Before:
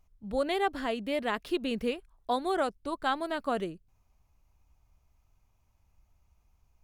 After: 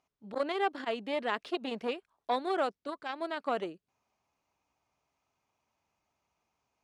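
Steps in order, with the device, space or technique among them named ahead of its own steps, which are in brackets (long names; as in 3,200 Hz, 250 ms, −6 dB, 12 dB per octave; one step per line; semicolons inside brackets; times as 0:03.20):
public-address speaker with an overloaded transformer (saturating transformer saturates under 680 Hz; band-pass filter 280–6,100 Hz)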